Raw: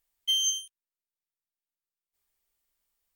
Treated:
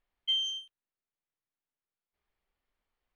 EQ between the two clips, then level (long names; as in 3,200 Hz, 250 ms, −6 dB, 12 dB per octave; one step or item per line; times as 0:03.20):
high-frequency loss of the air 370 metres
+4.5 dB